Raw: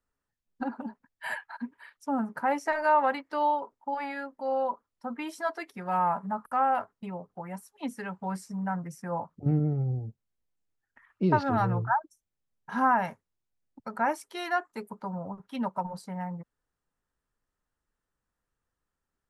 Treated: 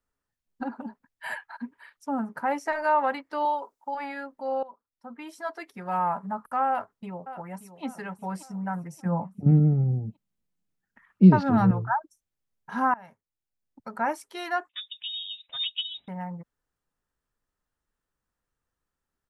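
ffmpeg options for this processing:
-filter_complex "[0:a]asettb=1/sr,asplit=3[s0][s1][s2];[s0]atrim=end=3.454[s3];[s1]atrim=start=3.45:end=3.95,asetpts=PTS-STARTPTS,afade=t=in:d=0.004:c=qsin,afade=t=out:st=0.496:d=0.004:c=qsin,bass=f=250:g=-11,treble=f=4000:g=8[s4];[s2]atrim=start=3.946[s5];[s3][s4]acrossfade=d=0.004:c1=hsin:c2=qsin[s6];[s6][s5]acrossfade=d=0.004:c1=qsin:c2=hsin,asplit=2[s7][s8];[s8]afade=t=in:st=6.68:d=0.01,afade=t=out:st=7.84:d=0.01,aecho=0:1:580|1160|1740|2320:0.237137|0.106712|0.0480203|0.0216091[s9];[s7][s9]amix=inputs=2:normalize=0,asettb=1/sr,asplit=3[s10][s11][s12];[s10]atrim=end=9.054[s13];[s11]atrim=start=9.05:end=11.71,asetpts=PTS-STARTPTS,afade=t=in:d=0.004:c=qsin,afade=t=out:st=2.656:d=0.004:c=qsin,equalizer=f=190:t=o:w=0.74:g=14[s14];[s12]atrim=start=11.706[s15];[s13][s14]acrossfade=d=0.004:c1=hsin:c2=qsin[s16];[s16][s15]acrossfade=d=0.004:c1=qsin:c2=hsin,asettb=1/sr,asplit=3[s17][s18][s19];[s17]atrim=end=14.694[s20];[s18]atrim=start=14.69:end=16.08,asetpts=PTS-STARTPTS,afade=t=in:d=0.004:c=qsin,afade=t=out:st=1.386:d=0.004:c=qsin,lowpass=f=3300:t=q:w=0.5098,lowpass=f=3300:t=q:w=0.6013,lowpass=f=3300:t=q:w=0.9,lowpass=f=3300:t=q:w=2.563,afreqshift=-3900[s21];[s19]atrim=start=16.076[s22];[s20][s21]acrossfade=d=0.004:c1=hsin:c2=qsin[s23];[s23][s22]acrossfade=d=0.004:c1=qsin:c2=hsin,asplit=3[s24][s25][s26];[s24]atrim=end=4.63,asetpts=PTS-STARTPTS,afade=t=out:st=4.626:d=0.004:c=hsin:silence=0.125893[s27];[s25]atrim=start=4.63:end=12.94,asetpts=PTS-STARTPTS,afade=t=in:d=1.22:silence=0.125893,afade=t=out:st=8.306:d=0.004:c=hsin:silence=0.0668344[s28];[s26]atrim=start=12.94,asetpts=PTS-STARTPTS,afade=t=in:d=1.05:silence=0.0668344[s29];[s27][s28][s29]concat=n=3:v=0:a=1"

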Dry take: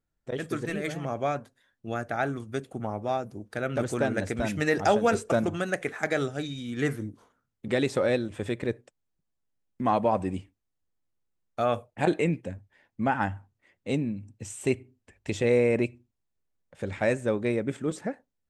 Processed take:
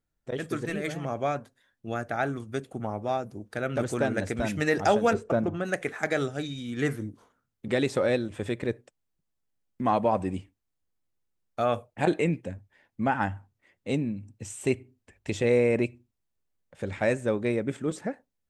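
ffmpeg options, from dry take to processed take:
-filter_complex "[0:a]asettb=1/sr,asplit=3[s0][s1][s2];[s0]atrim=end=5.134[s3];[s1]atrim=start=5.13:end=5.65,asetpts=PTS-STARTPTS,afade=t=in:d=0.004:c=qsin,afade=t=out:st=0.516:d=0.004:c=qsin,lowpass=f=1200:p=1[s4];[s2]atrim=start=5.646[s5];[s3][s4]acrossfade=d=0.004:c1=hsin:c2=qsin[s6];[s6][s5]acrossfade=d=0.004:c1=qsin:c2=hsin"

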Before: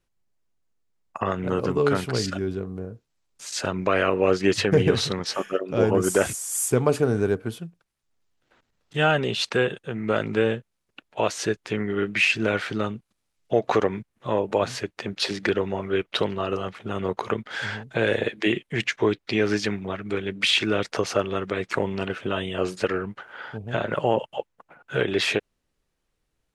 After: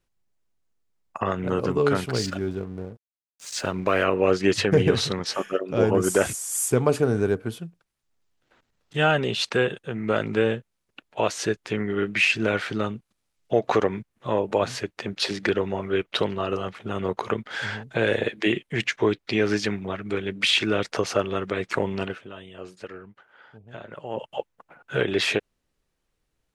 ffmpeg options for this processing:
-filter_complex "[0:a]asettb=1/sr,asplit=3[s0][s1][s2];[s0]atrim=end=2.064[s3];[s1]atrim=start=2.06:end=4.04,asetpts=PTS-STARTPTS,afade=t=in:d=0.004:c=qsin,afade=t=out:st=1.976:d=0.004:c=qsin,aeval=exprs='sgn(val(0))*max(abs(val(0))-0.00398,0)':c=same[s4];[s2]atrim=start=4.036[s5];[s3][s4]acrossfade=d=0.004:c1=hsin:c2=qsin[s6];[s6][s5]acrossfade=d=0.004:c1=qsin:c2=hsin,asplit=3[s7][s8][s9];[s7]atrim=end=22.26,asetpts=PTS-STARTPTS,afade=t=out:st=22.02:d=0.24:silence=0.199526[s10];[s8]atrim=start=22.26:end=24.09,asetpts=PTS-STARTPTS,volume=0.2[s11];[s9]atrim=start=24.09,asetpts=PTS-STARTPTS,afade=t=in:d=0.24:silence=0.199526[s12];[s10][s11][s12]concat=n=3:v=0:a=1"

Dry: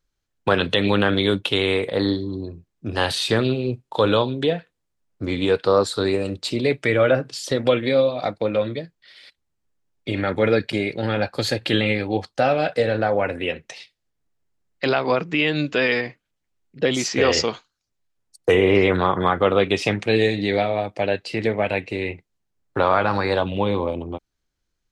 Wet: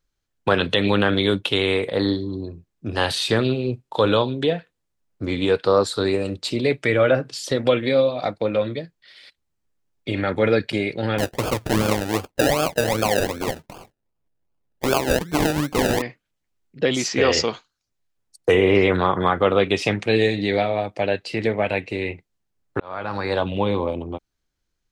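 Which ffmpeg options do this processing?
-filter_complex "[0:a]asettb=1/sr,asplit=3[s0][s1][s2];[s0]atrim=end=11.184[s3];[s1]atrim=start=11.18:end=16.02,asetpts=PTS-STARTPTS,afade=t=in:d=0.004:c=qsin,afade=t=out:st=4.836:d=0.004:c=qsin,acrusher=samples=32:mix=1:aa=0.000001:lfo=1:lforange=19.2:lforate=2.6[s4];[s2]atrim=start=16.016[s5];[s3][s4]acrossfade=d=0.004:c1=hsin:c2=qsin[s6];[s6][s5]acrossfade=d=0.004:c1=qsin:c2=hsin,asplit=2[s7][s8];[s7]atrim=end=22.8,asetpts=PTS-STARTPTS,afade=t=out:st=22.796:d=0.004:c=hsin[s9];[s8]atrim=start=22.8,asetpts=PTS-STARTPTS,afade=t=in:d=0.66[s10];[s9][s10]concat=n=2:v=0:a=1"

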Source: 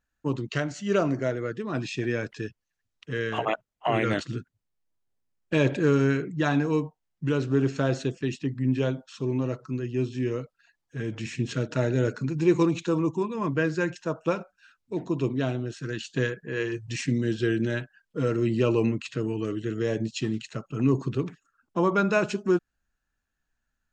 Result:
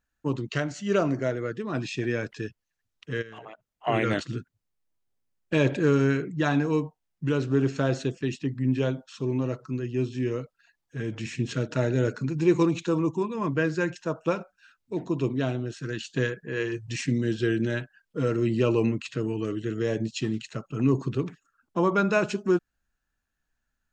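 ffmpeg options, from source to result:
-filter_complex "[0:a]asplit=3[s0][s1][s2];[s0]afade=t=out:st=3.21:d=0.02[s3];[s1]acompressor=threshold=0.01:ratio=8:attack=3.2:release=140:knee=1:detection=peak,afade=t=in:st=3.21:d=0.02,afade=t=out:st=3.86:d=0.02[s4];[s2]afade=t=in:st=3.86:d=0.02[s5];[s3][s4][s5]amix=inputs=3:normalize=0"

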